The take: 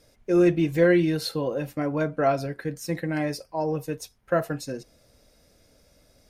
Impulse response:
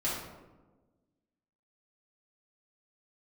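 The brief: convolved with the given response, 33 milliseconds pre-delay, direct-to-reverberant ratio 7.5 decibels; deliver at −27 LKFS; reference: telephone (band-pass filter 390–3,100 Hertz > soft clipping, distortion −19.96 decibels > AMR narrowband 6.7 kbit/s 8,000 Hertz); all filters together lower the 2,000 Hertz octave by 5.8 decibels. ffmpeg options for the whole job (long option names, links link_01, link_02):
-filter_complex "[0:a]equalizer=frequency=2000:width_type=o:gain=-7,asplit=2[link_01][link_02];[1:a]atrim=start_sample=2205,adelay=33[link_03];[link_02][link_03]afir=irnorm=-1:irlink=0,volume=-14.5dB[link_04];[link_01][link_04]amix=inputs=2:normalize=0,highpass=390,lowpass=3100,asoftclip=threshold=-15.5dB,volume=3.5dB" -ar 8000 -c:a libopencore_amrnb -b:a 6700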